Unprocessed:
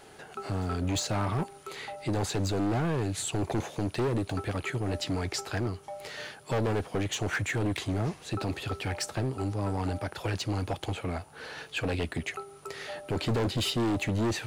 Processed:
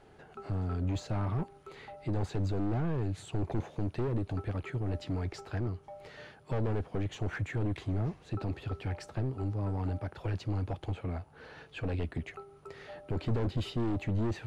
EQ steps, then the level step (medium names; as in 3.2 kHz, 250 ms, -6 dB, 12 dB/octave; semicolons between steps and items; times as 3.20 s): RIAA curve playback; bass shelf 220 Hz -7.5 dB; -7.5 dB